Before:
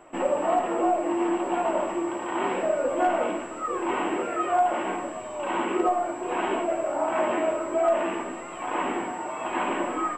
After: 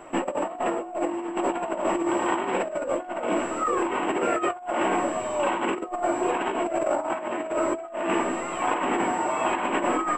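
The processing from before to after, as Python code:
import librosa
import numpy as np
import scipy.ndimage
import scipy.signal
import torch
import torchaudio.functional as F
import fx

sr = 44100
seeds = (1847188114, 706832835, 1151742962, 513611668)

y = fx.over_compress(x, sr, threshold_db=-29.0, ratio=-0.5)
y = y * 10.0 ** (3.5 / 20.0)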